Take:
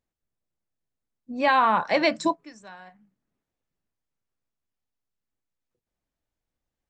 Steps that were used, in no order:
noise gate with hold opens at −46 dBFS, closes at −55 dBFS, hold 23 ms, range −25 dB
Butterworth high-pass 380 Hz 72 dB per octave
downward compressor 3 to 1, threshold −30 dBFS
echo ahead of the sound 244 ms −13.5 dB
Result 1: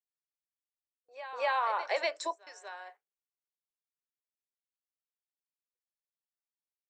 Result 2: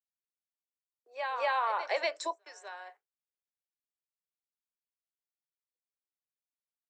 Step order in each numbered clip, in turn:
downward compressor, then Butterworth high-pass, then noise gate with hold, then echo ahead of the sound
echo ahead of the sound, then downward compressor, then noise gate with hold, then Butterworth high-pass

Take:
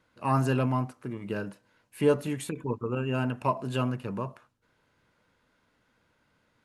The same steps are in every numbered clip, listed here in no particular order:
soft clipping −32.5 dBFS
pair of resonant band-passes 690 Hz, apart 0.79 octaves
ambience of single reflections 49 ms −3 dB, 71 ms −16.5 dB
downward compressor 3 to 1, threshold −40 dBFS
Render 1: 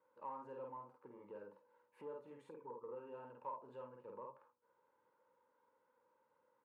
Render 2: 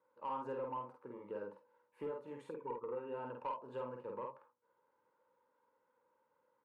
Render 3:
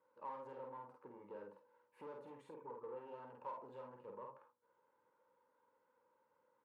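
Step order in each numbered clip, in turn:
ambience of single reflections, then downward compressor, then soft clipping, then pair of resonant band-passes
pair of resonant band-passes, then downward compressor, then soft clipping, then ambience of single reflections
soft clipping, then ambience of single reflections, then downward compressor, then pair of resonant band-passes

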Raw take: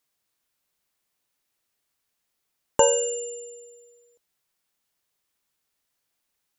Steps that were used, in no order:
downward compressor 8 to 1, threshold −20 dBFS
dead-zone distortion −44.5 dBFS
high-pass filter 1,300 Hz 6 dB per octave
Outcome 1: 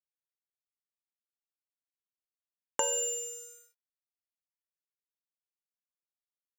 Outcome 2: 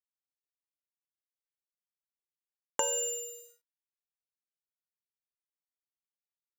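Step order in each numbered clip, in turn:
downward compressor, then dead-zone distortion, then high-pass filter
downward compressor, then high-pass filter, then dead-zone distortion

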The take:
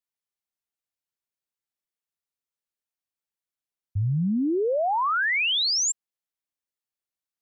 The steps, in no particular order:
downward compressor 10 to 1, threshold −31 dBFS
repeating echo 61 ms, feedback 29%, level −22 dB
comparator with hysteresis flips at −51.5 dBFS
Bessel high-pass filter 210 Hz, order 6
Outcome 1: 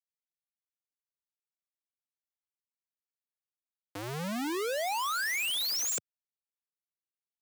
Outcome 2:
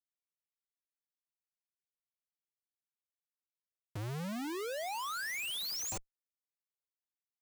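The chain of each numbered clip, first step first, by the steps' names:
repeating echo, then comparator with hysteresis, then downward compressor, then Bessel high-pass filter
Bessel high-pass filter, then downward compressor, then repeating echo, then comparator with hysteresis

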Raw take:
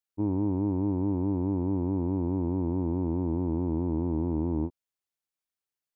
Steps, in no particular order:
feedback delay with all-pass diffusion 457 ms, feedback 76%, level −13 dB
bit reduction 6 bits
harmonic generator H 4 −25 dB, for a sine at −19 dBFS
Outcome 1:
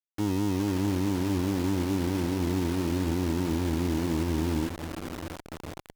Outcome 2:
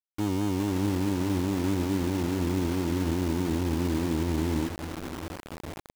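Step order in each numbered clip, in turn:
feedback delay with all-pass diffusion, then bit reduction, then harmonic generator
harmonic generator, then feedback delay with all-pass diffusion, then bit reduction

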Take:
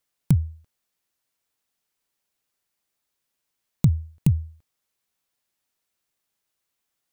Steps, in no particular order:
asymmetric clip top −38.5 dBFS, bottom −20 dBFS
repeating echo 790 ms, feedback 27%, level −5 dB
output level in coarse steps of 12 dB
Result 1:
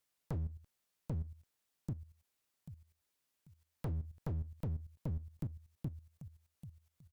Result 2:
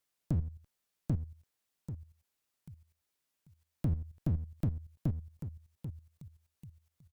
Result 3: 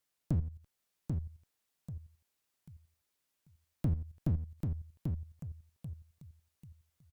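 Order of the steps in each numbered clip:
repeating echo, then asymmetric clip, then output level in coarse steps
repeating echo, then output level in coarse steps, then asymmetric clip
output level in coarse steps, then repeating echo, then asymmetric clip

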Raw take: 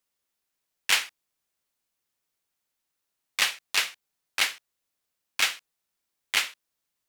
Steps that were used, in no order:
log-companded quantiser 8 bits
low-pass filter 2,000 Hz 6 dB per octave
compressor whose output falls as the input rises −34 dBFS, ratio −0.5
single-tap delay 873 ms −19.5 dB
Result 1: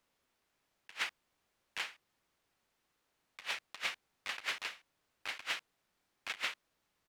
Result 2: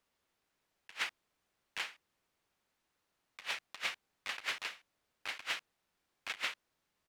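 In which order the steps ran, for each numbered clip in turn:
log-companded quantiser, then single-tap delay, then compressor whose output falls as the input rises, then low-pass filter
single-tap delay, then compressor whose output falls as the input rises, then log-companded quantiser, then low-pass filter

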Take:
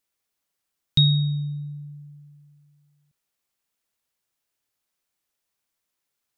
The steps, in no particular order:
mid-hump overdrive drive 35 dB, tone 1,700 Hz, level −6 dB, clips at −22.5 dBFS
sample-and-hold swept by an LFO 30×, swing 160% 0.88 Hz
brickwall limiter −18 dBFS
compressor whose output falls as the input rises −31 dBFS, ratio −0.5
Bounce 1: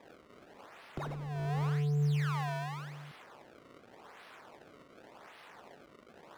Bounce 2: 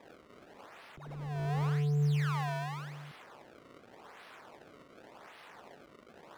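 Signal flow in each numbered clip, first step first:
brickwall limiter, then sample-and-hold swept by an LFO, then mid-hump overdrive, then compressor whose output falls as the input rises
sample-and-hold swept by an LFO, then mid-hump overdrive, then compressor whose output falls as the input rises, then brickwall limiter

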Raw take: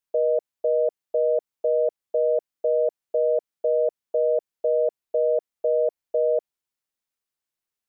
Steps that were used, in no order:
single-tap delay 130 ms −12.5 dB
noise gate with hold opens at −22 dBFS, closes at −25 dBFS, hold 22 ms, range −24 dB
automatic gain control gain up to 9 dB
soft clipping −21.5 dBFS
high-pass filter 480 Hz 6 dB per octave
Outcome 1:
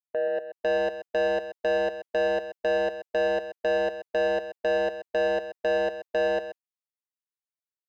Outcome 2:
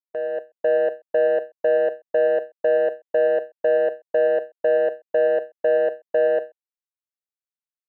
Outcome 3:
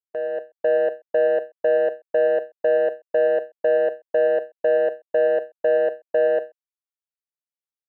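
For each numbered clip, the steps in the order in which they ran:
high-pass filter, then noise gate with hold, then automatic gain control, then soft clipping, then single-tap delay
high-pass filter, then soft clipping, then automatic gain control, then single-tap delay, then noise gate with hold
high-pass filter, then soft clipping, then single-tap delay, then automatic gain control, then noise gate with hold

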